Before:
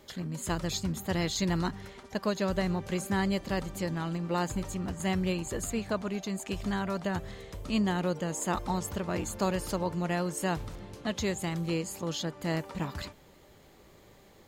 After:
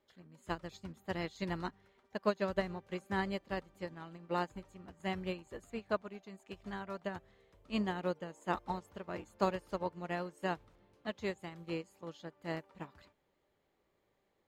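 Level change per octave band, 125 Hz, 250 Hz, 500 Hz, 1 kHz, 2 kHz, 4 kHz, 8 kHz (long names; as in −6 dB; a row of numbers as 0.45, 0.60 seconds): −12.0, −10.0, −5.0, −4.5, −6.0, −11.0, −24.0 decibels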